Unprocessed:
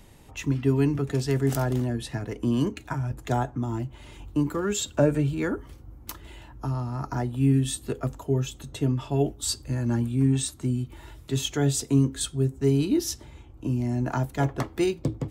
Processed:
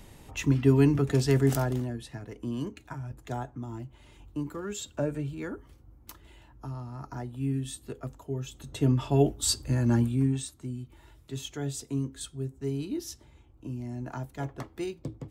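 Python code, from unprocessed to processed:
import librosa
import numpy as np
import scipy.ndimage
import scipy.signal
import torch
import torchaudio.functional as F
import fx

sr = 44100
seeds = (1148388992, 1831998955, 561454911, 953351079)

y = fx.gain(x, sr, db=fx.line((1.4, 1.5), (2.07, -9.0), (8.39, -9.0), (8.91, 1.5), (10.03, 1.5), (10.5, -10.0)))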